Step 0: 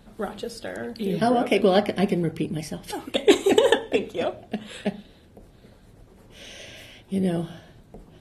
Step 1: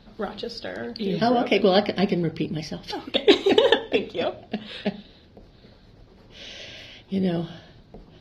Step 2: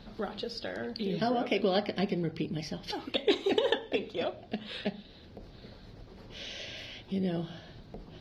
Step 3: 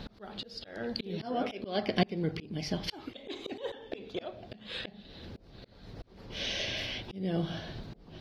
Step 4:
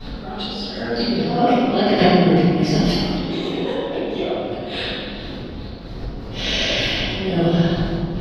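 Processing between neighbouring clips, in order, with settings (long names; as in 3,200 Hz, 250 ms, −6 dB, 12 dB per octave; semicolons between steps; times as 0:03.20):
high shelf with overshoot 6,400 Hz −12 dB, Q 3
downward compressor 1.5 to 1, threshold −46 dBFS, peak gain reduction 13 dB; level +1.5 dB
volume swells 441 ms; level +7.5 dB
convolution reverb RT60 2.6 s, pre-delay 3 ms, DRR −19.5 dB; level −8 dB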